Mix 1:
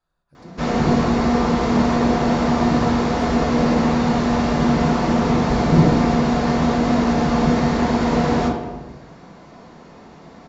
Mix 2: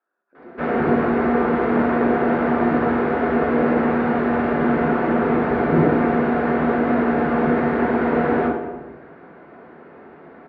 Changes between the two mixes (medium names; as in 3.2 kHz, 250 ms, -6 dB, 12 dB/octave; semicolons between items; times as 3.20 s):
speech: add steep high-pass 220 Hz 36 dB/octave; master: add cabinet simulation 120–2300 Hz, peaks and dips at 130 Hz -9 dB, 190 Hz -7 dB, 390 Hz +6 dB, 1 kHz -4 dB, 1.5 kHz +6 dB